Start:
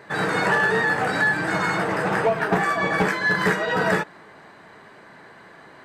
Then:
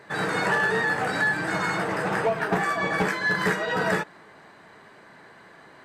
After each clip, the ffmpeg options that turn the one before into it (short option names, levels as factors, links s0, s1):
-af "equalizer=f=9500:w=0.34:g=2.5,volume=0.668"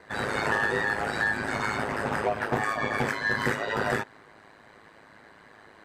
-af "aeval=exprs='val(0)*sin(2*PI*53*n/s)':c=same"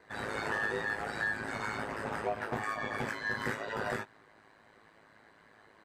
-filter_complex "[0:a]asplit=2[s0][s1];[s1]adelay=18,volume=0.398[s2];[s0][s2]amix=inputs=2:normalize=0,volume=0.376"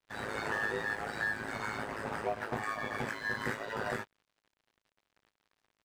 -af "aeval=exprs='sgn(val(0))*max(abs(val(0))-0.00224,0)':c=same"